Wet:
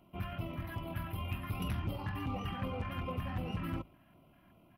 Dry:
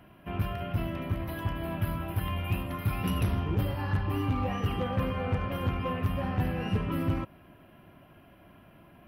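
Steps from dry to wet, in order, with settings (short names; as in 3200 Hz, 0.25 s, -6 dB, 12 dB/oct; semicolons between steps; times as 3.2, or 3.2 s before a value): notches 50/100/150 Hz; LFO notch square 1.4 Hz 460–1700 Hz; tempo 1.9×; dynamic EQ 2000 Hz, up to +4 dB, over -50 dBFS, Q 0.79; gain -6.5 dB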